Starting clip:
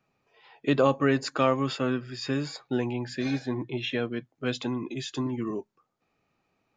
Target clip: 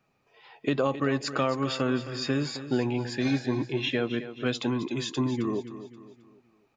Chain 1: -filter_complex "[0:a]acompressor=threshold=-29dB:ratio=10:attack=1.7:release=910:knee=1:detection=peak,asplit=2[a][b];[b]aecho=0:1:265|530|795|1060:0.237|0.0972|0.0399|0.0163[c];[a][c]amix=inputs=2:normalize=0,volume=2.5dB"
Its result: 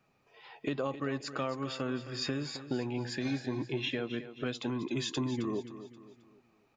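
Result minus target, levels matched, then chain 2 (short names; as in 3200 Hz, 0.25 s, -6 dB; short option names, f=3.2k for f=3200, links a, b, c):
compressor: peak gain reduction +8 dB
-filter_complex "[0:a]acompressor=threshold=-20dB:ratio=10:attack=1.7:release=910:knee=1:detection=peak,asplit=2[a][b];[b]aecho=0:1:265|530|795|1060:0.237|0.0972|0.0399|0.0163[c];[a][c]amix=inputs=2:normalize=0,volume=2.5dB"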